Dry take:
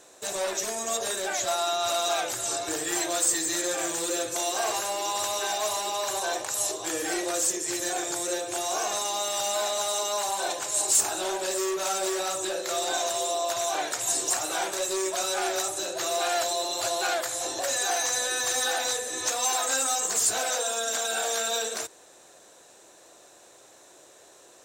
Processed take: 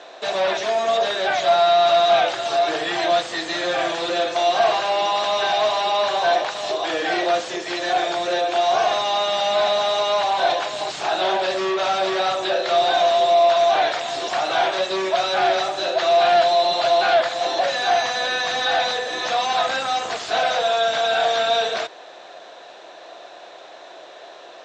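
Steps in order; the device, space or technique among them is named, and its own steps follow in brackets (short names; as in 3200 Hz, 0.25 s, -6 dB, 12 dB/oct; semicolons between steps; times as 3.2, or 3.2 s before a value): overdrive pedal into a guitar cabinet (overdrive pedal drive 20 dB, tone 4700 Hz, clips at -13 dBFS; speaker cabinet 86–4400 Hz, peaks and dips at 91 Hz -9 dB, 140 Hz +3 dB, 680 Hz +8 dB, 3400 Hz +3 dB)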